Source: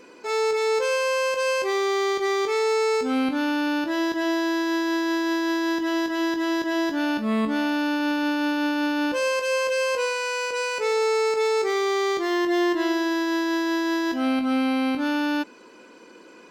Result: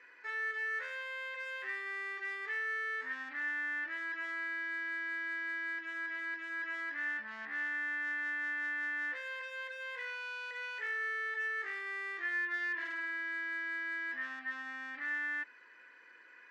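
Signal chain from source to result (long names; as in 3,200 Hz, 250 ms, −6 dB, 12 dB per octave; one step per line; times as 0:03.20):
in parallel at −11 dB: sine wavefolder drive 14 dB, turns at −11 dBFS
on the sum: resonant band-pass 1,800 Hz, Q 13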